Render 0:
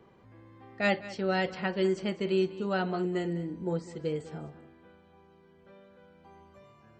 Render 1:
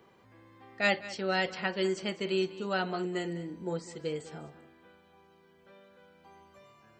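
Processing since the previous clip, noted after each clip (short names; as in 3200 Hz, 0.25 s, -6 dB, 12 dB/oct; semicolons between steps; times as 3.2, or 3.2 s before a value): tilt +2 dB/oct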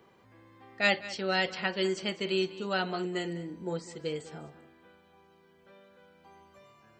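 dynamic EQ 3600 Hz, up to +4 dB, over -50 dBFS, Q 0.96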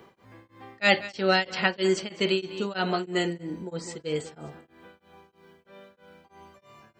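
beating tremolo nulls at 3.1 Hz; gain +8.5 dB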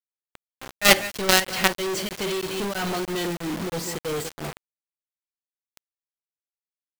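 companded quantiser 2-bit; gain -1 dB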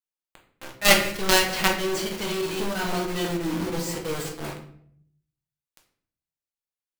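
shoebox room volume 100 m³, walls mixed, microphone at 0.71 m; gain -3 dB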